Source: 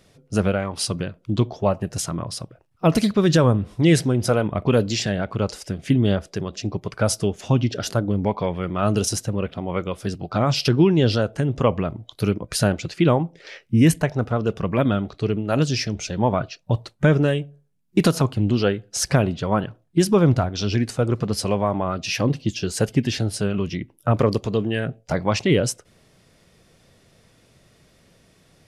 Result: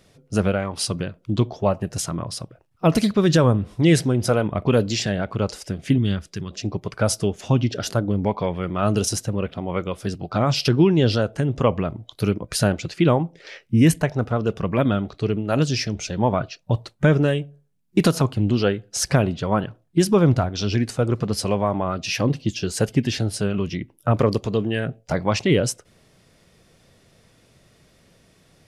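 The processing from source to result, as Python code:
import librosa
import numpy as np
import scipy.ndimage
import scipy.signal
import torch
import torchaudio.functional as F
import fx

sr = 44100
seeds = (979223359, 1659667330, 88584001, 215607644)

y = fx.peak_eq(x, sr, hz=610.0, db=-14.5, octaves=1.4, at=(5.98, 6.51))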